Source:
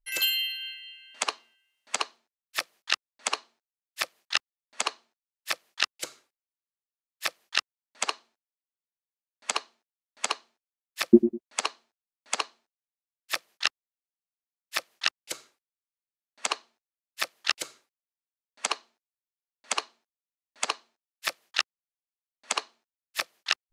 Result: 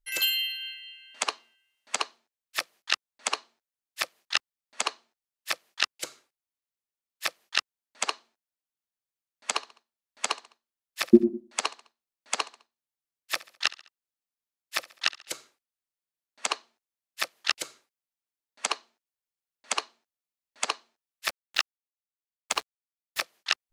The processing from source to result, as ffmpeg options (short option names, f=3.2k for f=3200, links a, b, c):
-filter_complex "[0:a]asettb=1/sr,asplit=3[a][b][c];[a]atrim=end=9.534[d];[b]atrim=start=9.53:end=15.32,asetpts=PTS-STARTPTS,afade=t=in:d=0.004:c=qsin,afade=t=out:st=5.786:d=0.004:c=qsin,aecho=1:1:69|138|207:0.1|0.046|0.0212,atrim=end_sample=255339[e];[c]atrim=start=15.316[f];[d][e]acrossfade=d=0.004:c1=hsin:c2=qsin[g];[g][f]acrossfade=d=0.004:c1=qsin:c2=hsin,asettb=1/sr,asplit=3[h][i][j];[h]atrim=end=21.274[k];[i]atrim=start=21.27:end=23.21,asetpts=PTS-STARTPTS,afade=t=in:d=0.004:c=qsin,afade=t=out:st=1.936:d=0.004:c=qsin,acrusher=bits=5:mix=0:aa=0.5[l];[j]atrim=start=23.206[m];[k][l]acrossfade=d=0.004:c1=hsin:c2=qsin[n];[n][m]acrossfade=d=0.004:c1=qsin:c2=hsin"